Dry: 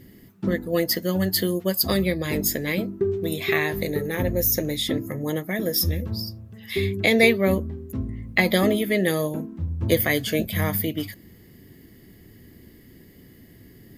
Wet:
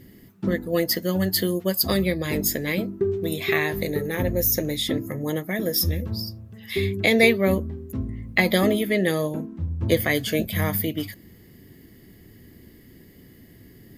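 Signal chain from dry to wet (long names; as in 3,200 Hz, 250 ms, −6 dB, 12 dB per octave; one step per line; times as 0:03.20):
0:08.87–0:10.15: high-shelf EQ 11,000 Hz −8.5 dB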